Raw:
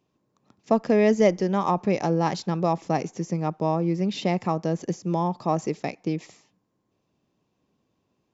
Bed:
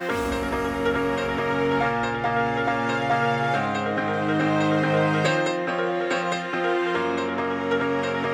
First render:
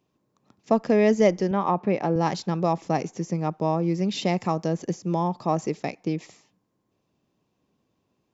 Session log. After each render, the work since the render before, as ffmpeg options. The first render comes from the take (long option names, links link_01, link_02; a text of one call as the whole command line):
ffmpeg -i in.wav -filter_complex "[0:a]asettb=1/sr,asplit=3[link_01][link_02][link_03];[link_01]atrim=end=1.514[link_04];[link_02]atrim=start=1.51:end=2.16,asetpts=PTS-STARTPTS,afade=type=in:duration=0.004:curve=qsin,afade=type=out:start_time=0.646:duration=0.004:curve=qsin,highpass=130,lowpass=2900[link_05];[link_03]atrim=start=2.156[link_06];[link_04][link_05]acrossfade=duration=0.004:curve1=hsin:curve2=qsin[link_07];[link_07][link_06]acrossfade=duration=0.004:curve1=qsin:curve2=hsin,asettb=1/sr,asplit=3[link_08][link_09][link_10];[link_08]atrim=end=3.834[link_11];[link_09]atrim=start=3.83:end=4.68,asetpts=PTS-STARTPTS,afade=type=in:duration=0.004:curve=qsin,afade=type=out:start_time=0.846:duration=0.004:curve=qsin,highshelf=frequency=5500:gain=8[link_12];[link_10]atrim=start=4.676[link_13];[link_11][link_12]acrossfade=duration=0.004:curve1=hsin:curve2=qsin[link_14];[link_14][link_13]acrossfade=duration=0.004:curve1=qsin:curve2=hsin" out.wav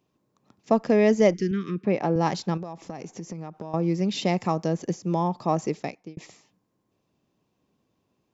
ffmpeg -i in.wav -filter_complex "[0:a]asplit=3[link_01][link_02][link_03];[link_01]afade=type=out:start_time=1.33:duration=0.02[link_04];[link_02]asuperstop=centerf=760:order=8:qfactor=0.72,afade=type=in:start_time=1.33:duration=0.02,afade=type=out:start_time=1.84:duration=0.02[link_05];[link_03]afade=type=in:start_time=1.84:duration=0.02[link_06];[link_04][link_05][link_06]amix=inputs=3:normalize=0,asettb=1/sr,asplit=3[link_07][link_08][link_09];[link_07]atrim=end=2.574[link_10];[link_08]atrim=start=2.57:end=3.74,asetpts=PTS-STARTPTS,afade=type=in:duration=0.004:curve=qsin,afade=type=out:start_time=1.166:duration=0.004:curve=qsin,acompressor=threshold=-31dB:ratio=10:attack=3.2:release=140:knee=1:detection=peak[link_11];[link_09]atrim=start=3.736[link_12];[link_10][link_11]acrossfade=duration=0.004:curve1=hsin:curve2=qsin[link_13];[link_13][link_12]acrossfade=duration=0.004:curve1=qsin:curve2=hsin,asplit=2[link_14][link_15];[link_14]atrim=end=6.17,asetpts=PTS-STARTPTS,afade=type=out:start_time=5.77:duration=0.4[link_16];[link_15]atrim=start=6.17,asetpts=PTS-STARTPTS,afade=type=in:duration=0.004:curve=hsin[link_17];[link_16][link_17]concat=n=2:v=0:a=1" out.wav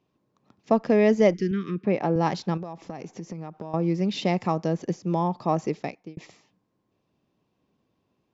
ffmpeg -i in.wav -af "lowpass=5100" out.wav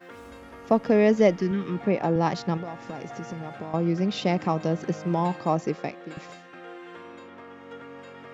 ffmpeg -i in.wav -i bed.wav -filter_complex "[1:a]volume=-19dB[link_01];[0:a][link_01]amix=inputs=2:normalize=0" out.wav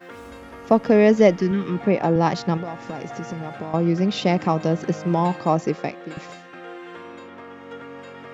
ffmpeg -i in.wav -af "volume=4.5dB" out.wav